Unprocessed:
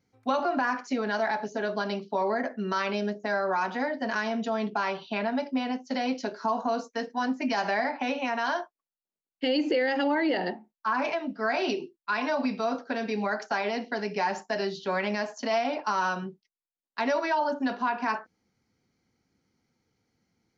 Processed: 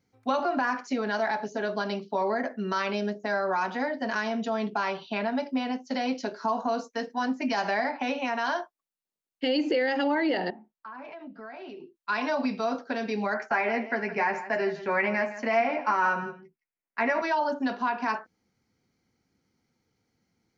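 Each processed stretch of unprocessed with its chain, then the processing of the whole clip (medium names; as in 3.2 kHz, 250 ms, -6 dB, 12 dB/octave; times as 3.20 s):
10.50–11.96 s: compression 4:1, threshold -40 dBFS + distance through air 260 m
13.34–17.22 s: resonant high shelf 2.8 kHz -7.5 dB, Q 3 + doubling 13 ms -6.5 dB + delay 165 ms -13.5 dB
whole clip: none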